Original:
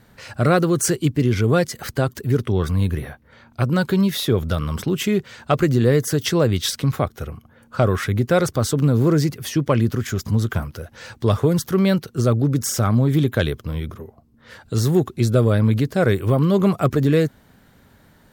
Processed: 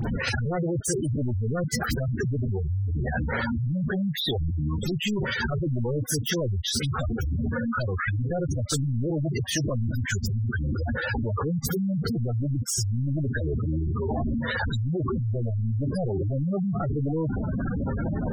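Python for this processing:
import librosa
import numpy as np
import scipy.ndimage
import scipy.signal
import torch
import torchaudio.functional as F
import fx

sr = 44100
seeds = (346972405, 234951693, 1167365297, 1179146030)

y = np.sign(x) * np.sqrt(np.mean(np.square(x)))
y = fx.spec_gate(y, sr, threshold_db=-10, keep='strong')
y = fx.dispersion(y, sr, late='highs', ms=49.0, hz=2400.0)
y = F.gain(torch.from_numpy(y), -4.5).numpy()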